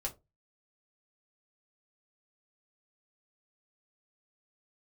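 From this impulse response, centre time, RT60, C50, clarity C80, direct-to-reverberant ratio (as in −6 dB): 10 ms, 0.25 s, 17.5 dB, 25.0 dB, −1.5 dB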